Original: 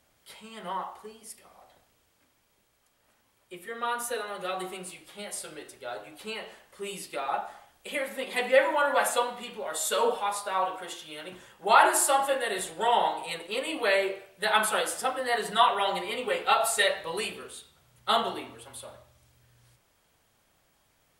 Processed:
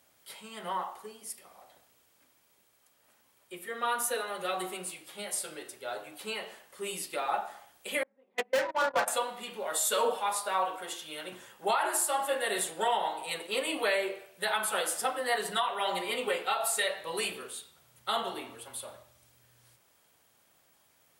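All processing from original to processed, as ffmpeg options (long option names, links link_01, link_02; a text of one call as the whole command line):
ffmpeg -i in.wav -filter_complex "[0:a]asettb=1/sr,asplit=3[link_01][link_02][link_03];[link_01]atrim=end=8.034[link_04];[link_02]atrim=start=8.03:end=9.08,asetpts=PTS-STARTPTS,afade=type=in:duration=0.004:curve=qsin,afade=type=out:start_time=1.046:duration=0.004:curve=qsin,agate=range=-27dB:threshold=-27dB:ratio=16:release=100:detection=peak,adynamicsmooth=sensitivity=3:basefreq=1000,volume=20dB,asoftclip=hard,volume=-20dB[link_05];[link_03]atrim=start=9.076[link_06];[link_04][link_05]acrossfade=duration=0.004:curve1=hsin:curve2=qsin[link_07];[link_07][link_06]acrossfade=duration=0.004:curve1=qsin:curve2=hsin,highpass=frequency=180:poles=1,highshelf=frequency=9100:gain=7,alimiter=limit=-18.5dB:level=0:latency=1:release=438" out.wav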